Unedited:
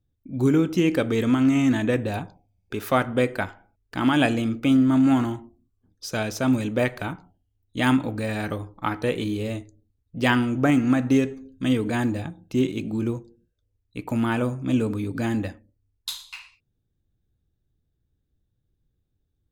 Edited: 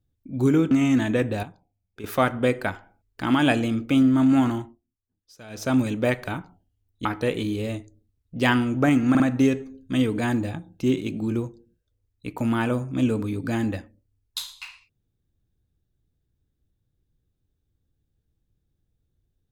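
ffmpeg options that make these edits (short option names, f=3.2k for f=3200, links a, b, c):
-filter_complex "[0:a]asplit=9[a][b][c][d][e][f][g][h][i];[a]atrim=end=0.712[j];[b]atrim=start=1.448:end=2.172[k];[c]atrim=start=2.168:end=2.782,asetpts=PTS-STARTPTS,volume=-9.5dB[l];[d]atrim=start=2.778:end=5.54,asetpts=PTS-STARTPTS,afade=t=out:st=2.572:d=0.19:silence=0.133352[m];[e]atrim=start=5.54:end=6.22,asetpts=PTS-STARTPTS,volume=-17.5dB[n];[f]atrim=start=6.22:end=7.792,asetpts=PTS-STARTPTS,afade=t=in:d=0.19:silence=0.133352[o];[g]atrim=start=8.858:end=10.962[p];[h]atrim=start=10.908:end=10.962[q];[i]atrim=start=10.908[r];[j][k]acrossfade=d=0.004:c1=hsin:c2=hsin[s];[s][l]acrossfade=d=0.004:c1=hsin:c2=hsin[t];[m][n][o]concat=n=3:v=0:a=1[u];[t][u]acrossfade=d=0.004:c1=hsin:c2=hsin[v];[v][p]acrossfade=d=0.004:c1=hsin:c2=hsin[w];[w][q]acrossfade=d=0.004:c1=hsin:c2=hsin[x];[x][r]acrossfade=d=0.004:c1=hsin:c2=hsin"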